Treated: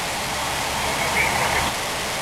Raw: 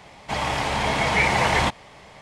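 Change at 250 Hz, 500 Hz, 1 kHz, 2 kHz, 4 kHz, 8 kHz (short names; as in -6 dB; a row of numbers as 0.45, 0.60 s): -2.0, -0.5, 0.0, +1.0, +4.0, +9.5 dB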